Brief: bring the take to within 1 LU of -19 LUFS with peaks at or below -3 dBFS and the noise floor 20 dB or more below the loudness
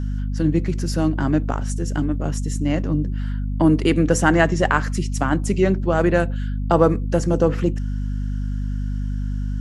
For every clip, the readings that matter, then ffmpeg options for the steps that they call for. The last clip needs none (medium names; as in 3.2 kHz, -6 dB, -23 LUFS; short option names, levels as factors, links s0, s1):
hum 50 Hz; highest harmonic 250 Hz; hum level -21 dBFS; loudness -21.0 LUFS; peak level -1.5 dBFS; loudness target -19.0 LUFS
-> -af "bandreject=f=50:t=h:w=6,bandreject=f=100:t=h:w=6,bandreject=f=150:t=h:w=6,bandreject=f=200:t=h:w=6,bandreject=f=250:t=h:w=6"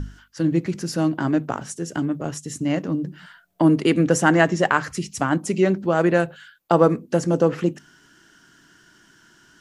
hum not found; loudness -21.5 LUFS; peak level -2.5 dBFS; loudness target -19.0 LUFS
-> -af "volume=1.33,alimiter=limit=0.708:level=0:latency=1"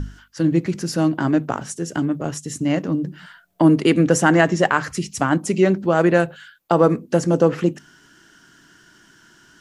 loudness -19.5 LUFS; peak level -3.0 dBFS; noise floor -53 dBFS